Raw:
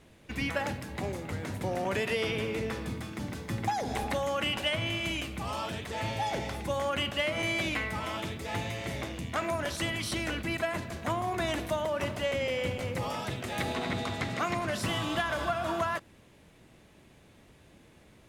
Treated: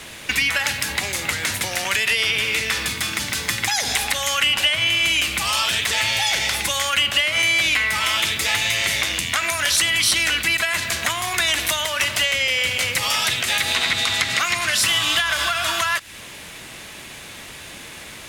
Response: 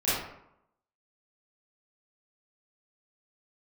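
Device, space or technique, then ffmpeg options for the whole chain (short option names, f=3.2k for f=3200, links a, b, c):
mastering chain: -filter_complex "[0:a]equalizer=f=1.2k:t=o:w=1.8:g=2,acrossover=split=98|1600[a][b][c];[a]acompressor=threshold=-46dB:ratio=4[d];[b]acompressor=threshold=-44dB:ratio=4[e];[c]acompressor=threshold=-38dB:ratio=4[f];[d][e][f]amix=inputs=3:normalize=0,acompressor=threshold=-44dB:ratio=2,tiltshelf=f=1.1k:g=-9,alimiter=level_in=24.5dB:limit=-1dB:release=50:level=0:latency=1,volume=-4.5dB"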